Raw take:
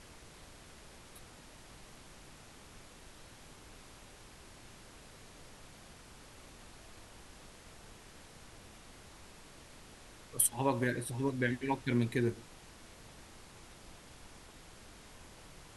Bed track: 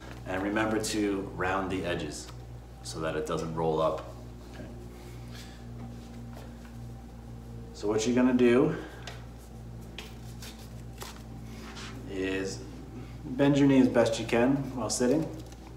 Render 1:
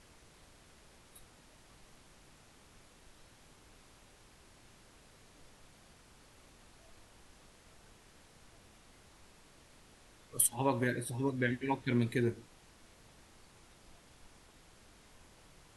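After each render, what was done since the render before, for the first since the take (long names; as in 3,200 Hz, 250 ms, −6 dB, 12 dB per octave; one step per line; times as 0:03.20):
noise reduction from a noise print 6 dB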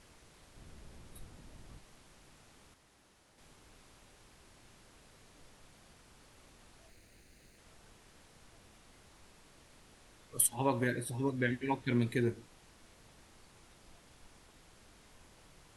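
0:00.56–0:01.79: low-shelf EQ 310 Hz +11.5 dB
0:02.74–0:03.38: fill with room tone
0:06.88–0:07.58: lower of the sound and its delayed copy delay 0.46 ms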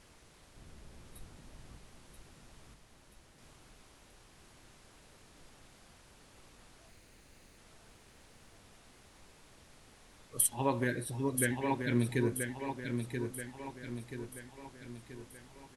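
repeating echo 981 ms, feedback 50%, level −6 dB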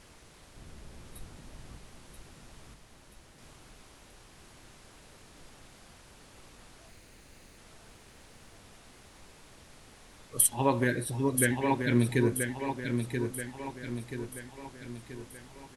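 level +5 dB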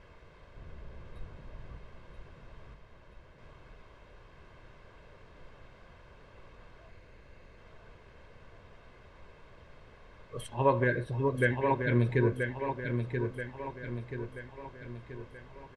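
low-pass filter 2,200 Hz 12 dB per octave
comb filter 1.9 ms, depth 48%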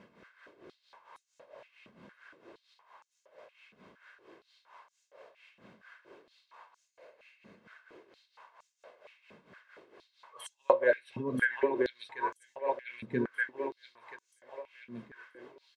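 amplitude tremolo 4.4 Hz, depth 75%
high-pass on a step sequencer 4.3 Hz 210–6,700 Hz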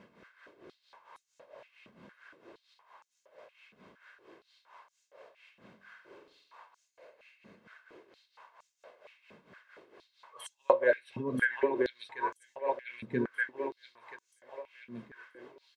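0:05.77–0:06.60: flutter between parallel walls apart 7.9 metres, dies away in 0.49 s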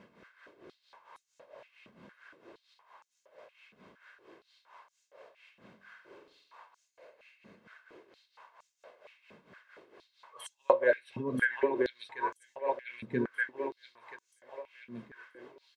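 no processing that can be heard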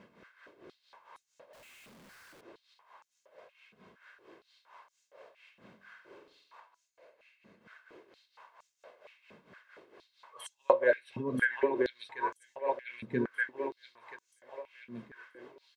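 0:01.53–0:02.41: sign of each sample alone
0:03.40–0:03.97: notch comb filter 290 Hz
0:06.60–0:07.61: tuned comb filter 330 Hz, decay 0.18 s, mix 40%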